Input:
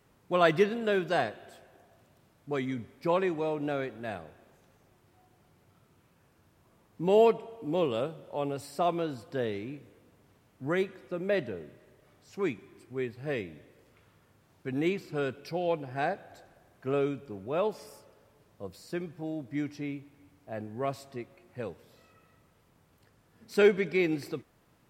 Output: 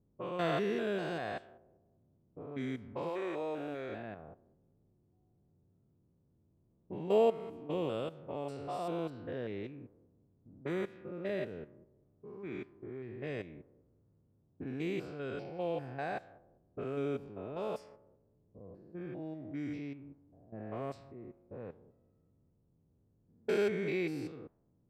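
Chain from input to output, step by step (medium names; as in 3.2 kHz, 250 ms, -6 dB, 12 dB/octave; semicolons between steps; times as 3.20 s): spectrogram pixelated in time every 200 ms; level-controlled noise filter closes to 300 Hz, open at -30 dBFS; 3.08–3.90 s: peaking EQ 180 Hz -14.5 dB -> -8.5 dB 0.94 oct; 9.10–9.64 s: low-pass 3.4 kHz 12 dB/octave; trim -3.5 dB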